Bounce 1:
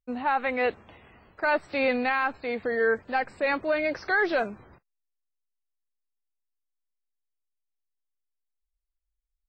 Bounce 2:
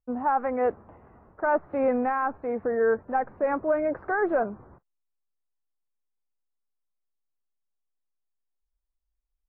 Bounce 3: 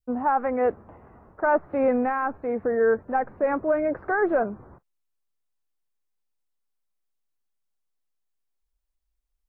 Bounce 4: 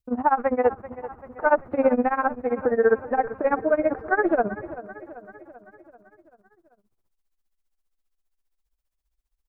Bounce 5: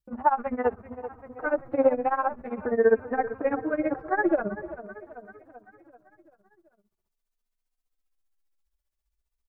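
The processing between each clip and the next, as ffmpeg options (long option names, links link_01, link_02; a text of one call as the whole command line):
ffmpeg -i in.wav -af "lowpass=frequency=1300:width=0.5412,lowpass=frequency=1300:width=1.3066,volume=2dB" out.wav
ffmpeg -i in.wav -af "adynamicequalizer=threshold=0.0112:dfrequency=940:dqfactor=1.1:tfrequency=940:tqfactor=1.1:attack=5:release=100:ratio=0.375:range=2:mode=cutabove:tftype=bell,volume=3dB" out.wav
ffmpeg -i in.wav -af "tremolo=f=15:d=0.91,aecho=1:1:388|776|1164|1552|1940|2328:0.168|0.0957|0.0545|0.0311|0.0177|0.0101,volume=5.5dB" out.wav
ffmpeg -i in.wav -filter_complex "[0:a]asplit=2[link_01][link_02];[link_02]adelay=3.1,afreqshift=0.46[link_03];[link_01][link_03]amix=inputs=2:normalize=1" out.wav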